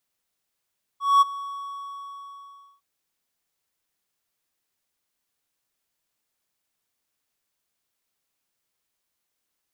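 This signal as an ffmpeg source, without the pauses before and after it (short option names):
-f lavfi -i "aevalsrc='0.335*(1-4*abs(mod(1120*t+0.25,1)-0.5))':d=1.81:s=44100,afade=t=in:d=0.214,afade=t=out:st=0.214:d=0.02:silence=0.112,afade=t=out:st=0.38:d=1.43"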